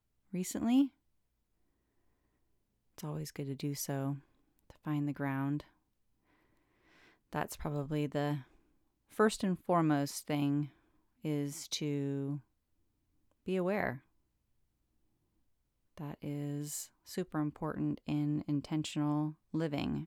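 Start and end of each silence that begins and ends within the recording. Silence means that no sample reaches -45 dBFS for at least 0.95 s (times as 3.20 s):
0.88–2.98 s
5.61–7.33 s
12.39–13.48 s
13.97–15.98 s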